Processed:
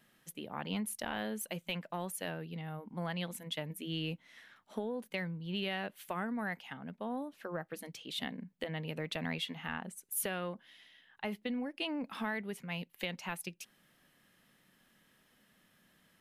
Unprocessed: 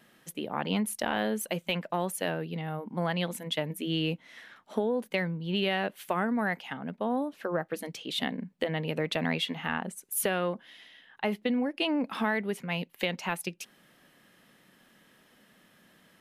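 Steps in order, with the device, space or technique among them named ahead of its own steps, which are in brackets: smiley-face EQ (bass shelf 100 Hz +7 dB; peaking EQ 420 Hz -3.5 dB 2.3 oct; treble shelf 8.8 kHz +3.5 dB); trim -7 dB

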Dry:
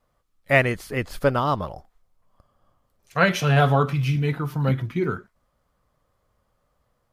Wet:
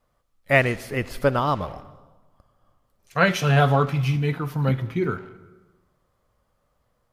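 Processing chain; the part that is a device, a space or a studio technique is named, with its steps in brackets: saturated reverb return (on a send at -12 dB: reverberation RT60 1.2 s, pre-delay 55 ms + saturation -26 dBFS, distortion -6 dB)

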